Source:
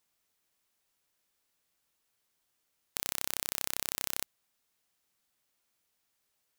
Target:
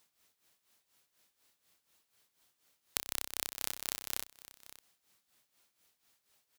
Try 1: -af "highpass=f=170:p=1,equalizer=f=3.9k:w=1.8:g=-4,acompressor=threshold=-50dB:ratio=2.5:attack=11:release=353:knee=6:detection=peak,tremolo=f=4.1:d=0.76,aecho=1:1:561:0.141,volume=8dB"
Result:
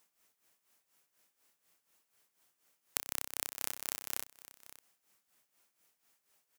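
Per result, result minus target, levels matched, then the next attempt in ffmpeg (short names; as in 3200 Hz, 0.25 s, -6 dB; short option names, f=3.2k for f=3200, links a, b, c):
4000 Hz band -3.5 dB; 125 Hz band -3.0 dB
-af "highpass=f=170:p=1,equalizer=f=3.9k:w=1.8:g=2,acompressor=threshold=-50dB:ratio=2.5:attack=11:release=353:knee=6:detection=peak,tremolo=f=4.1:d=0.76,aecho=1:1:561:0.141,volume=8dB"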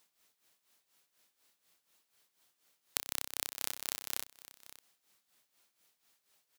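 125 Hz band -4.0 dB
-af "highpass=f=47:p=1,equalizer=f=3.9k:w=1.8:g=2,acompressor=threshold=-50dB:ratio=2.5:attack=11:release=353:knee=6:detection=peak,tremolo=f=4.1:d=0.76,aecho=1:1:561:0.141,volume=8dB"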